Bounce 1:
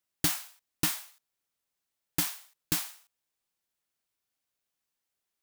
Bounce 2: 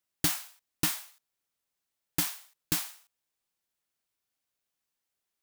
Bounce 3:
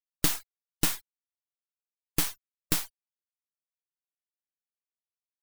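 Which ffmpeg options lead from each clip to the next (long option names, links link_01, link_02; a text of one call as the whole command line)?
ffmpeg -i in.wav -af anull out.wav
ffmpeg -i in.wav -af "afftfilt=real='re*gte(hypot(re,im),0.00891)':imag='im*gte(hypot(re,im),0.00891)':win_size=1024:overlap=0.75,aeval=exprs='max(val(0),0)':channel_layout=same,volume=5.5dB" out.wav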